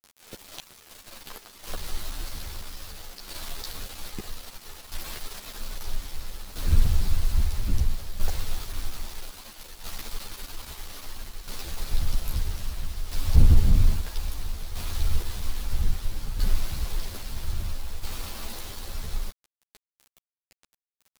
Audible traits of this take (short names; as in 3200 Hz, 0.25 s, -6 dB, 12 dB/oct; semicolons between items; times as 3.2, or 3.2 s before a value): a quantiser's noise floor 6-bit, dither none; tremolo saw down 0.61 Hz, depth 60%; a shimmering, thickened sound